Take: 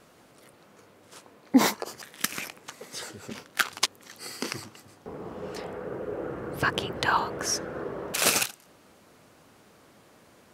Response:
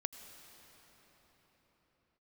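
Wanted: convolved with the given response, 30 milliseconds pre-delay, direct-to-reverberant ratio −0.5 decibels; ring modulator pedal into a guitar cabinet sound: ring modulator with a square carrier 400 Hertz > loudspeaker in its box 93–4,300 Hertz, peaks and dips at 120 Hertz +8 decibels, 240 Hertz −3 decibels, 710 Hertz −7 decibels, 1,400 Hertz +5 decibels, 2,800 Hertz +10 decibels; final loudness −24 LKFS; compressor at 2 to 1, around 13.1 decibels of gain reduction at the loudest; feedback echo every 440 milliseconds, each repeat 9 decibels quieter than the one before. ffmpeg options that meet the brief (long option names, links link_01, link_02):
-filter_complex "[0:a]acompressor=threshold=-38dB:ratio=2,aecho=1:1:440|880|1320|1760:0.355|0.124|0.0435|0.0152,asplit=2[link_01][link_02];[1:a]atrim=start_sample=2205,adelay=30[link_03];[link_02][link_03]afir=irnorm=-1:irlink=0,volume=1.5dB[link_04];[link_01][link_04]amix=inputs=2:normalize=0,aeval=exprs='val(0)*sgn(sin(2*PI*400*n/s))':channel_layout=same,highpass=93,equalizer=frequency=120:width_type=q:width=4:gain=8,equalizer=frequency=240:width_type=q:width=4:gain=-3,equalizer=frequency=710:width_type=q:width=4:gain=-7,equalizer=frequency=1400:width_type=q:width=4:gain=5,equalizer=frequency=2800:width_type=q:width=4:gain=10,lowpass=frequency=4300:width=0.5412,lowpass=frequency=4300:width=1.3066,volume=9dB"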